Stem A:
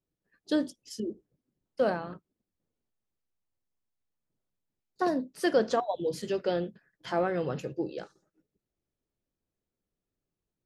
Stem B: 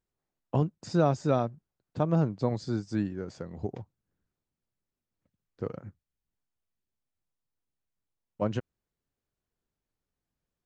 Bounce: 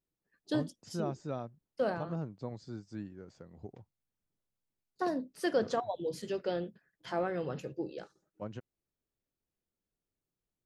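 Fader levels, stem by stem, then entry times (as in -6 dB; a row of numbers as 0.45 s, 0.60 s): -5.0 dB, -12.5 dB; 0.00 s, 0.00 s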